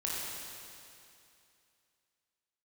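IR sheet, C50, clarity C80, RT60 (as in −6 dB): −3.0 dB, −1.0 dB, 2.6 s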